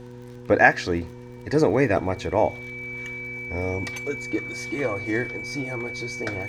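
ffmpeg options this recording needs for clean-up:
-af "adeclick=t=4,bandreject=f=122.3:t=h:w=4,bandreject=f=244.6:t=h:w=4,bandreject=f=366.9:t=h:w=4,bandreject=f=489.2:t=h:w=4,bandreject=f=2300:w=30"

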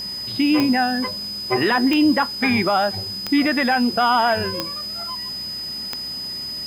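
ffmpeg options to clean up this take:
-af "adeclick=t=4,bandreject=f=63.8:t=h:w=4,bandreject=f=127.6:t=h:w=4,bandreject=f=191.4:t=h:w=4,bandreject=f=255.2:t=h:w=4,bandreject=f=319:t=h:w=4,bandreject=f=382.8:t=h:w=4,bandreject=f=5000:w=30,afwtdn=0.0063"

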